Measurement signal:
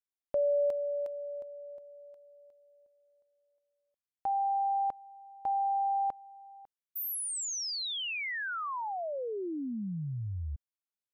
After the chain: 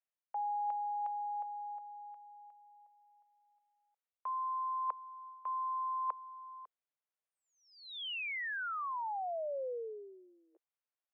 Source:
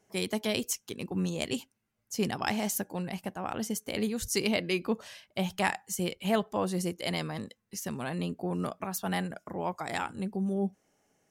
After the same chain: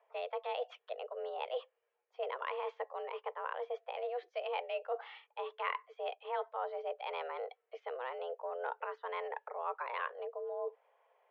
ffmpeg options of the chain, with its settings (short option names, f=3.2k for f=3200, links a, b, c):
-af "highshelf=f=2.1k:g=-9.5,areverse,acompressor=threshold=-41dB:ratio=4:attack=87:release=254:knee=1:detection=rms,areverse,highpass=f=210:t=q:w=0.5412,highpass=f=210:t=q:w=1.307,lowpass=f=3.1k:t=q:w=0.5176,lowpass=f=3.1k:t=q:w=0.7071,lowpass=f=3.1k:t=q:w=1.932,afreqshift=250,volume=3dB"